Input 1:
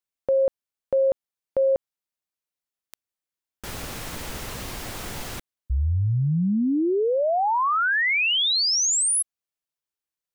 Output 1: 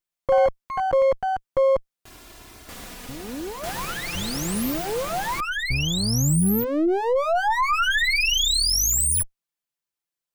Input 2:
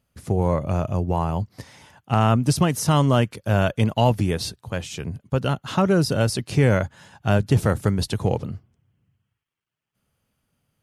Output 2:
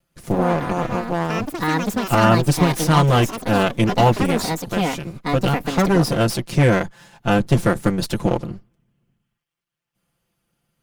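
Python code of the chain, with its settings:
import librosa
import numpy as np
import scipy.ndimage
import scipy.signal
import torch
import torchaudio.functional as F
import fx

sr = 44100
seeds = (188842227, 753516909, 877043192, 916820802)

y = fx.lower_of_two(x, sr, delay_ms=5.8)
y = fx.echo_pitch(y, sr, ms=118, semitones=6, count=2, db_per_echo=-6.0)
y = F.gain(torch.from_numpy(y), 2.5).numpy()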